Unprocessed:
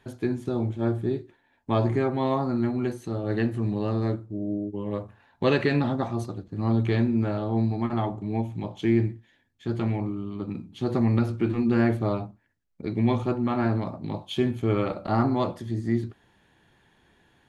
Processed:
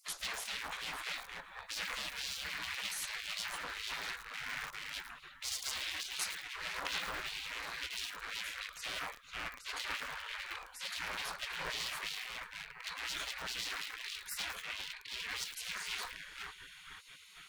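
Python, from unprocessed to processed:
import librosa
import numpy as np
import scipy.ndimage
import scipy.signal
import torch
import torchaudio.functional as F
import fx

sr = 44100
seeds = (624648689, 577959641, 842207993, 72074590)

y = fx.echo_banded(x, sr, ms=493, feedback_pct=60, hz=660.0, wet_db=-8.0)
y = fx.rider(y, sr, range_db=3, speed_s=0.5)
y = np.clip(10.0 ** (29.5 / 20.0) * y, -1.0, 1.0) / 10.0 ** (29.5 / 20.0)
y = fx.high_shelf(y, sr, hz=2800.0, db=-8.0, at=(14.51, 15.29))
y = fx.spec_gate(y, sr, threshold_db=-30, keep='weak')
y = fx.echo_crushed(y, sr, ms=110, feedback_pct=55, bits=8, wet_db=-6.5)
y = F.gain(torch.from_numpy(y), 13.0).numpy()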